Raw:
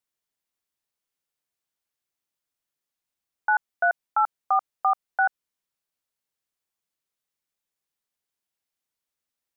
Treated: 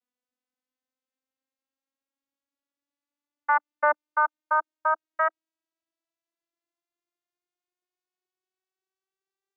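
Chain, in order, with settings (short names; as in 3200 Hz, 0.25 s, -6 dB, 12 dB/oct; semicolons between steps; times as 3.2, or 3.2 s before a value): vocoder on a gliding note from B3, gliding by +8 st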